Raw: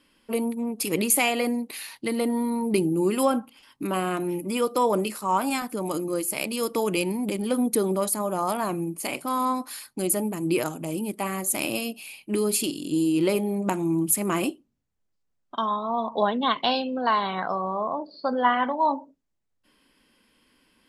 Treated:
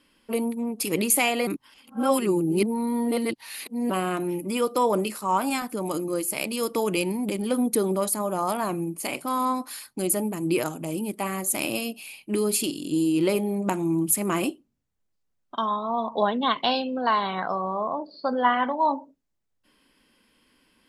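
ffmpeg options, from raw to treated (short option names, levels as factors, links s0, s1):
-filter_complex "[0:a]asplit=3[s0][s1][s2];[s0]atrim=end=1.472[s3];[s1]atrim=start=1.468:end=3.902,asetpts=PTS-STARTPTS,areverse[s4];[s2]atrim=start=3.898[s5];[s3][s4]acrossfade=d=0.004:c1=hsin:c2=hsin[s6];[s6][s5]acrossfade=d=0.004:c1=hsin:c2=hsin"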